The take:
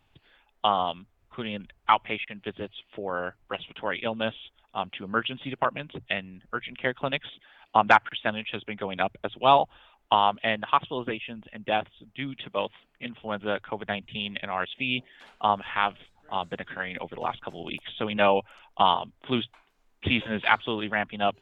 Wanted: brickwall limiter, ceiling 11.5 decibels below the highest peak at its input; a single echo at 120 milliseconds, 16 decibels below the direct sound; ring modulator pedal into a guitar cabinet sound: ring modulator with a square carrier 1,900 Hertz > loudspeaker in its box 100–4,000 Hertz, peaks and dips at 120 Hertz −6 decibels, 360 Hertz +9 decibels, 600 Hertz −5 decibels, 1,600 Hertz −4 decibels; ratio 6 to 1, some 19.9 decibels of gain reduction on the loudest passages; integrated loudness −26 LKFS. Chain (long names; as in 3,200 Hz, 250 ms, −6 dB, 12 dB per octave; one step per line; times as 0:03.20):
downward compressor 6 to 1, threshold −35 dBFS
brickwall limiter −28 dBFS
single-tap delay 120 ms −16 dB
ring modulator with a square carrier 1,900 Hz
loudspeaker in its box 100–4,000 Hz, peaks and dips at 120 Hz −6 dB, 360 Hz +9 dB, 600 Hz −5 dB, 1,600 Hz −4 dB
level +17.5 dB